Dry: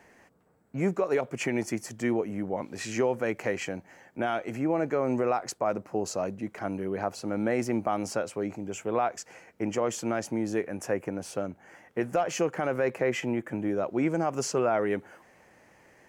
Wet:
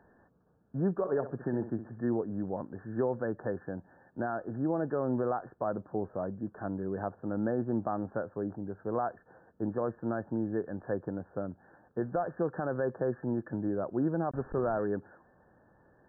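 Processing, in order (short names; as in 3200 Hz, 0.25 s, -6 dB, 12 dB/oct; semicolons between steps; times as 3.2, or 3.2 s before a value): 14.31–14.8 level-crossing sampler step -32.5 dBFS; brick-wall FIR low-pass 1800 Hz; low shelf 230 Hz +8 dB; 0.92–2.06 flutter echo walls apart 11 m, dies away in 0.34 s; gain -6 dB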